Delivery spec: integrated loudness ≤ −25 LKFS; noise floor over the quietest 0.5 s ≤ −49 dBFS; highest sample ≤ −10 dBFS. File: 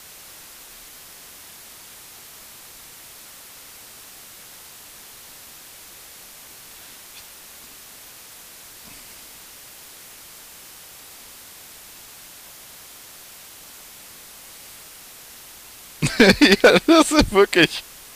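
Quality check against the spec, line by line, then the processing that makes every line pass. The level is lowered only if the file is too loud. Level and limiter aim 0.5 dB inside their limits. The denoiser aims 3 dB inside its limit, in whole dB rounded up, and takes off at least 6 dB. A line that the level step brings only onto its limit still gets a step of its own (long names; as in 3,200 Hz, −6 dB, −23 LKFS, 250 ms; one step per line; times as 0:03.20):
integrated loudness −15.0 LKFS: out of spec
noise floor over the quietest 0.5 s −43 dBFS: out of spec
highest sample −4.0 dBFS: out of spec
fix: level −10.5 dB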